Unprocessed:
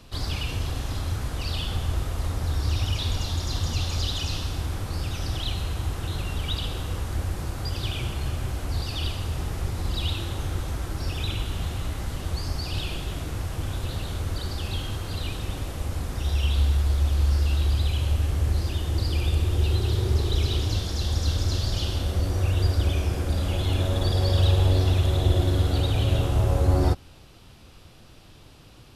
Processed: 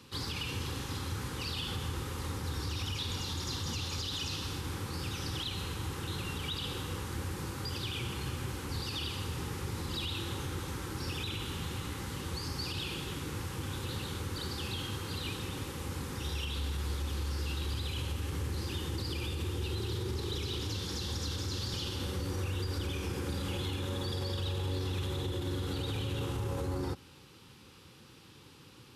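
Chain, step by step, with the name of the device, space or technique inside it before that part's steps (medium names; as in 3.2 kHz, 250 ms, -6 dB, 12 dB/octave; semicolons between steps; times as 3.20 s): PA system with an anti-feedback notch (high-pass 120 Hz 12 dB/octave; Butterworth band-stop 660 Hz, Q 2.7; peak limiter -24.5 dBFS, peak gain reduction 10 dB); trim -2.5 dB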